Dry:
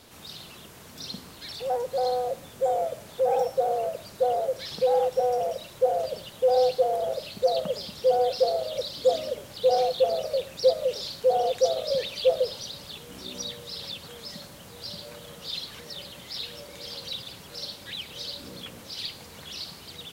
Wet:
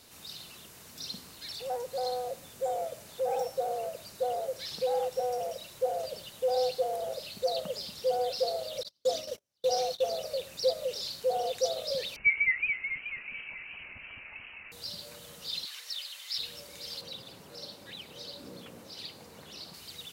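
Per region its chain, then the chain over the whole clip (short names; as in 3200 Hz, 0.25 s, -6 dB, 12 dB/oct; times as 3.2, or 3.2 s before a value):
8.83–10.16 gate -34 dBFS, range -39 dB + bell 5800 Hz +9 dB 0.23 oct
12.16–14.72 inverted band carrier 2800 Hz + warbling echo 0.216 s, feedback 59%, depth 183 cents, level -3 dB
15.65–16.38 HPF 1100 Hz + bell 3400 Hz +4.5 dB 2.1 oct
17.01–19.74 HPF 240 Hz 6 dB/oct + tilt shelf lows +8 dB, about 1300 Hz
whole clip: high shelf 2500 Hz +8 dB; notch 3300 Hz, Q 19; gain -7.5 dB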